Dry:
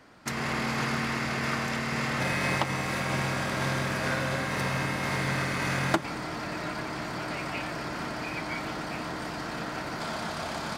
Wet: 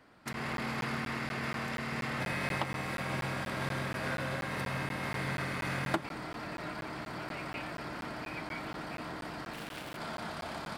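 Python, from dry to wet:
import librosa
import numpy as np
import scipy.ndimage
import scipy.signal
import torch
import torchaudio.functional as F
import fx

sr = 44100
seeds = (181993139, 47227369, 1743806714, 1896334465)

y = fx.self_delay(x, sr, depth_ms=0.44, at=(9.53, 9.97))
y = fx.peak_eq(y, sr, hz=6300.0, db=-7.0, octaves=0.57)
y = fx.buffer_crackle(y, sr, first_s=0.33, period_s=0.24, block=512, kind='zero')
y = y * librosa.db_to_amplitude(-6.0)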